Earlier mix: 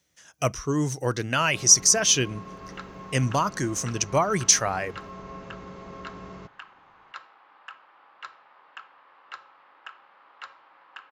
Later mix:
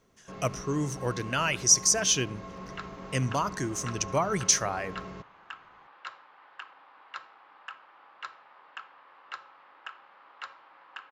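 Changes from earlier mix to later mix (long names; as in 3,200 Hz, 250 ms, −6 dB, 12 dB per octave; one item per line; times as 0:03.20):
speech −5.5 dB
first sound: entry −1.25 s
reverb: on, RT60 0.45 s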